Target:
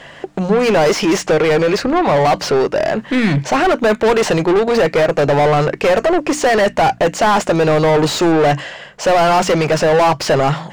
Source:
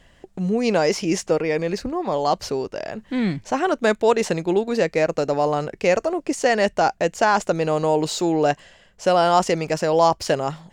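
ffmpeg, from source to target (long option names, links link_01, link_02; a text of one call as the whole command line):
ffmpeg -i in.wav -filter_complex "[0:a]equalizer=frequency=140:width=6.1:gain=10.5,asplit=2[link_01][link_02];[link_02]highpass=frequency=720:poles=1,volume=31dB,asoftclip=type=tanh:threshold=-4dB[link_03];[link_01][link_03]amix=inputs=2:normalize=0,lowpass=frequency=1900:poles=1,volume=-6dB,bandreject=frequency=60:width_type=h:width=6,bandreject=frequency=120:width_type=h:width=6,bandreject=frequency=180:width_type=h:width=6,bandreject=frequency=240:width_type=h:width=6,bandreject=frequency=300:width_type=h:width=6,volume=-1dB" out.wav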